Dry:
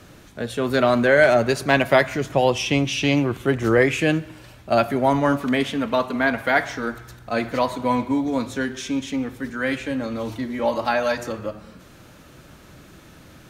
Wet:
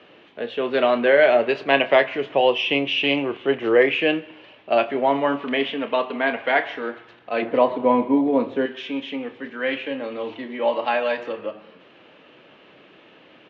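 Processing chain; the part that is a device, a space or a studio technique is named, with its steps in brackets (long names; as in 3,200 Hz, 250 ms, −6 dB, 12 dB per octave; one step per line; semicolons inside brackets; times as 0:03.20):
0:07.42–0:08.66: tilt shelving filter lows +8 dB, about 1,300 Hz
phone earpiece (loudspeaker in its box 340–3,200 Hz, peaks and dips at 450 Hz +4 dB, 1,400 Hz −6 dB, 2,900 Hz +8 dB)
double-tracking delay 29 ms −12 dB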